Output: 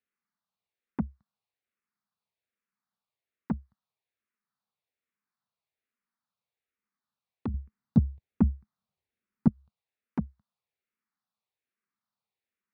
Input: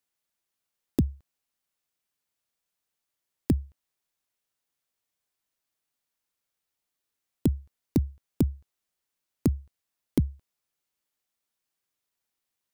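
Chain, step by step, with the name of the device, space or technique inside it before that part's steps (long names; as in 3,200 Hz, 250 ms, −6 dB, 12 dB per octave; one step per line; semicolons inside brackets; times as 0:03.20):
barber-pole phaser into a guitar amplifier (frequency shifter mixed with the dry sound −1.2 Hz; soft clipping −24 dBFS, distortion −9 dB; loudspeaker in its box 84–3,900 Hz, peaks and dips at 210 Hz +9 dB, 310 Hz −7 dB, 580 Hz −4 dB, 1,200 Hz +4 dB, 3,100 Hz −8 dB)
0:07.54–0:09.48: low-shelf EQ 320 Hz +11.5 dB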